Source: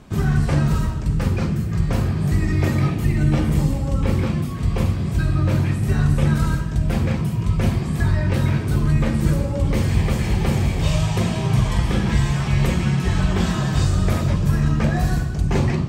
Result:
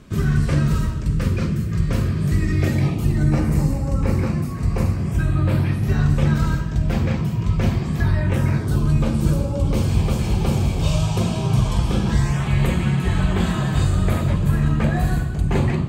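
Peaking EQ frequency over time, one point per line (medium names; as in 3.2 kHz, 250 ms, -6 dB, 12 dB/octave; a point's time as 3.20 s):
peaking EQ -13.5 dB 0.33 oct
2.56 s 800 Hz
3.35 s 3.3 kHz
4.93 s 3.3 kHz
6.02 s 10 kHz
7.93 s 10 kHz
8.82 s 1.9 kHz
12.06 s 1.9 kHz
12.47 s 5.5 kHz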